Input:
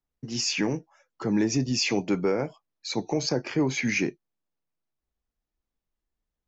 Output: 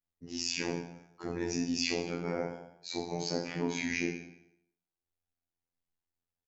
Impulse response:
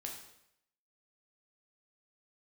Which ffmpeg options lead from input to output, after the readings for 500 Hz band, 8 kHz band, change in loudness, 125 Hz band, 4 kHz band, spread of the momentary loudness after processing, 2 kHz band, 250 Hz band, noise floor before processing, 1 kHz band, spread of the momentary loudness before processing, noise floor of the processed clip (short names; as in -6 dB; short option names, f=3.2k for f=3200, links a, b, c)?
-7.5 dB, n/a, -7.5 dB, -10.0 dB, -6.5 dB, 13 LU, -6.5 dB, -8.5 dB, under -85 dBFS, -5.5 dB, 10 LU, under -85 dBFS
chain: -filter_complex "[1:a]atrim=start_sample=2205,asetrate=48510,aresample=44100[a];[0:a][a]afir=irnorm=-1:irlink=0,afftfilt=real='hypot(re,im)*cos(PI*b)':imag='0':win_size=2048:overlap=0.75,asplit=2[b][c];[c]adelay=187,lowpass=f=1.8k:p=1,volume=-16dB,asplit=2[d][e];[e]adelay=187,lowpass=f=1.8k:p=1,volume=0.18[f];[b][d][f]amix=inputs=3:normalize=0"